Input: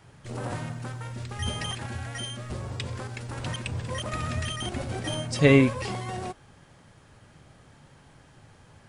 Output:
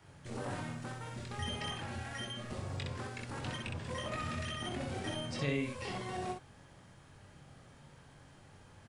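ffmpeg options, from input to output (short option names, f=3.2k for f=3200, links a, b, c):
-filter_complex "[0:a]acrossover=split=83|2000|4600[a][b][c][d];[a]acompressor=threshold=-49dB:ratio=4[e];[b]acompressor=threshold=-32dB:ratio=4[f];[c]acompressor=threshold=-40dB:ratio=4[g];[d]acompressor=threshold=-53dB:ratio=4[h];[e][f][g][h]amix=inputs=4:normalize=0,asplit=2[i][j];[j]aecho=0:1:22|63:0.562|0.668[k];[i][k]amix=inputs=2:normalize=0,volume=-6dB"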